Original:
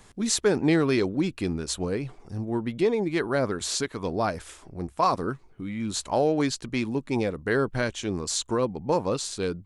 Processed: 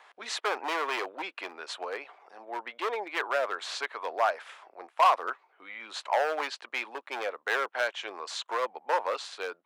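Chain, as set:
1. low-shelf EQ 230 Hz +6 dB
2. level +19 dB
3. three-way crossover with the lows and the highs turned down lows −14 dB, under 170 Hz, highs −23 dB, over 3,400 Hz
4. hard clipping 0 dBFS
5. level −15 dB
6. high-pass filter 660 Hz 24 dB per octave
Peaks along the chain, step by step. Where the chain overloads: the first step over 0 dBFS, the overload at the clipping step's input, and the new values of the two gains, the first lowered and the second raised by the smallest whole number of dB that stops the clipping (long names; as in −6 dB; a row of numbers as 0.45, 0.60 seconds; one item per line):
−8.0, +11.0, +9.5, 0.0, −15.0, −12.5 dBFS
step 2, 9.5 dB
step 2 +9 dB, step 5 −5 dB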